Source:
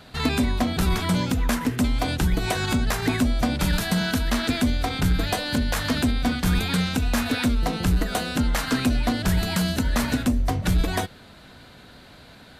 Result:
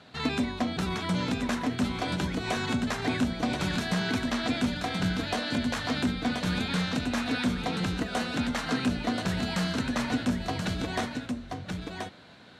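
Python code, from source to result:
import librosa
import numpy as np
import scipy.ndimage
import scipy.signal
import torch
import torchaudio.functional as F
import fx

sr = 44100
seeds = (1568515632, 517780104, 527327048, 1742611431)

p1 = fx.bandpass_edges(x, sr, low_hz=120.0, high_hz=6500.0)
p2 = fx.notch(p1, sr, hz=4800.0, q=27.0)
p3 = p2 + fx.echo_single(p2, sr, ms=1030, db=-5.0, dry=0)
y = F.gain(torch.from_numpy(p3), -5.0).numpy()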